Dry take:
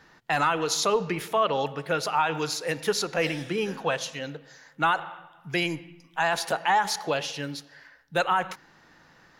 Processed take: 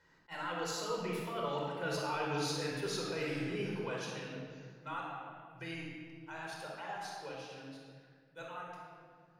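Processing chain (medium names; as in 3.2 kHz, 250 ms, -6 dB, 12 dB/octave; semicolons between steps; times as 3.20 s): Doppler pass-by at 1.95 s, 17 m/s, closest 2.9 m; reverse; compression 10:1, threshold -45 dBFS, peak gain reduction 23 dB; reverse; simulated room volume 3200 m³, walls mixed, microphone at 4.8 m; attacks held to a fixed rise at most 430 dB/s; trim +4.5 dB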